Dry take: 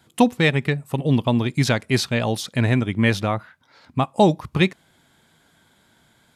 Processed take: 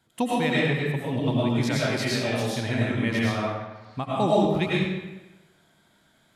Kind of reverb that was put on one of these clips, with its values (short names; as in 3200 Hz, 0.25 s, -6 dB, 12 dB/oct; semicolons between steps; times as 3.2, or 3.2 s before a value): digital reverb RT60 1.1 s, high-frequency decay 0.8×, pre-delay 65 ms, DRR -6.5 dB; gain -10.5 dB